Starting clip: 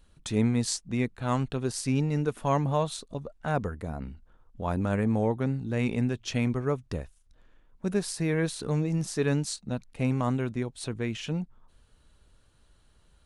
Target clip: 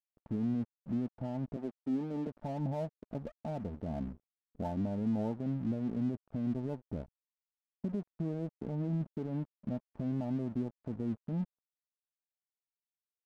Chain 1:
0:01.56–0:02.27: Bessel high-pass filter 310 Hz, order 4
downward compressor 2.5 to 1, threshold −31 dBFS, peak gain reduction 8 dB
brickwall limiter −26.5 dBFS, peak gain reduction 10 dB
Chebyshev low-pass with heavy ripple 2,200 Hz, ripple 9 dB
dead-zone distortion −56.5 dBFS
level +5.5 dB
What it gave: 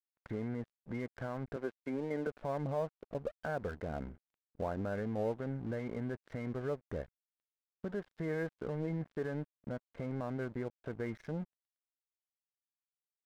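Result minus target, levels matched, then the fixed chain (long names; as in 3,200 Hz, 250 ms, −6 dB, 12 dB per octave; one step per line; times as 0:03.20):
2,000 Hz band +16.0 dB
0:01.56–0:02.27: Bessel high-pass filter 310 Hz, order 4
downward compressor 2.5 to 1, threshold −31 dBFS, peak gain reduction 8 dB
brickwall limiter −26.5 dBFS, peak gain reduction 10 dB
Chebyshev low-pass with heavy ripple 910 Hz, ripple 9 dB
dead-zone distortion −56.5 dBFS
level +5.5 dB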